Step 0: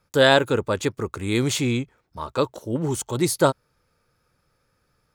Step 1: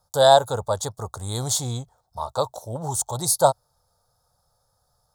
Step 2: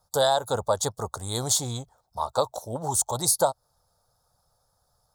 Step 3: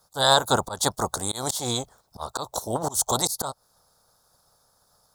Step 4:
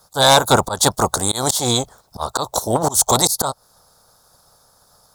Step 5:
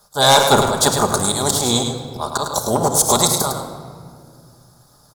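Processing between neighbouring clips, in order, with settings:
drawn EQ curve 110 Hz 0 dB, 330 Hz −17 dB, 740 Hz +10 dB, 1,600 Hz −10 dB, 2,500 Hz −28 dB, 3,600 Hz 0 dB, 9,000 Hz +7 dB, 14,000 Hz +5 dB
harmonic and percussive parts rebalanced percussive +7 dB; downward compressor 12 to 1, threshold −13 dBFS, peak gain reduction 10 dB; level −4.5 dB
ceiling on every frequency bin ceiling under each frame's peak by 14 dB; volume swells 192 ms; level +5.5 dB
sine wavefolder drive 7 dB, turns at −2.5 dBFS; level −1.5 dB
on a send: single-tap delay 105 ms −7 dB; on the sum: rectangular room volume 3,600 cubic metres, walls mixed, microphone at 1.3 metres; level −1 dB

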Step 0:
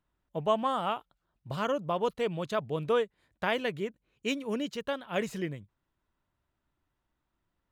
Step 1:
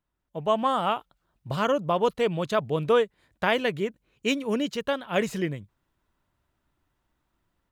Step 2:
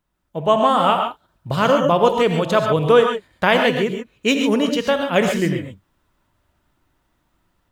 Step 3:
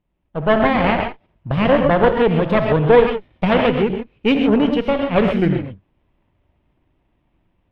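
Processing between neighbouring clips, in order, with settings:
automatic gain control gain up to 9 dB; level −3 dB
reverb whose tail is shaped and stops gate 160 ms rising, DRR 4 dB; level +7.5 dB
lower of the sound and its delayed copy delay 0.34 ms; high-frequency loss of the air 440 metres; level +4 dB

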